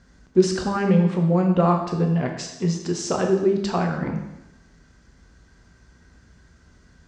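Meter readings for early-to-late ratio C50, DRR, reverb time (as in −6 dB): 6.5 dB, 2.0 dB, 0.95 s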